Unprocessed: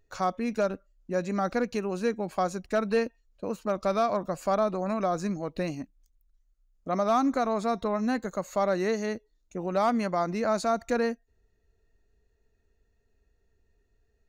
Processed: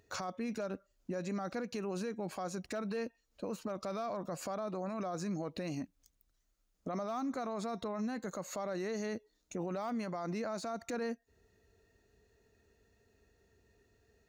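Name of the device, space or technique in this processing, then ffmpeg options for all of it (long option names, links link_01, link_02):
broadcast voice chain: -af "highpass=91,deesser=0.9,acompressor=threshold=-39dB:ratio=4,equalizer=frequency=5200:width_type=o:width=0.77:gain=2,alimiter=level_in=13dB:limit=-24dB:level=0:latency=1:release=14,volume=-13dB,volume=6.5dB"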